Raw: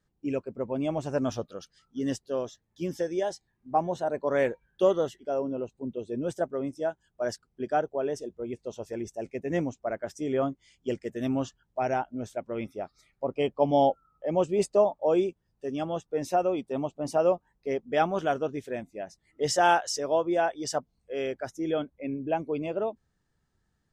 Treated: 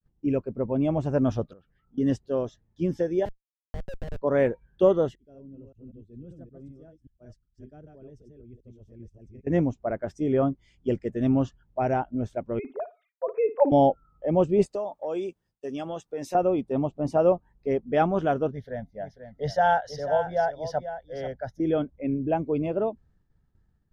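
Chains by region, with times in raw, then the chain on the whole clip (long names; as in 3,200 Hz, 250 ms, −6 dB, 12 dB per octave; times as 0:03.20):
0:01.53–0:01.98: low-pass filter 2,500 Hz 24 dB per octave + downward compressor 4 to 1, threshold −57 dBFS
0:03.25–0:04.22: formant filter e + comparator with hysteresis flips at −36 dBFS
0:05.15–0:09.47: delay that plays each chunk backwards 192 ms, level −4 dB + guitar amp tone stack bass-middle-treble 10-0-1
0:12.59–0:13.72: three sine waves on the formant tracks + flutter between parallel walls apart 9.6 metres, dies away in 0.24 s
0:14.66–0:16.35: RIAA equalisation recording + downward compressor 3 to 1, threshold −32 dBFS
0:18.51–0:21.60: phaser with its sweep stopped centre 1,700 Hz, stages 8 + single-tap delay 490 ms −10.5 dB
whole clip: RIAA equalisation playback; downward expander −56 dBFS; low-shelf EQ 150 Hz −6 dB; level +1 dB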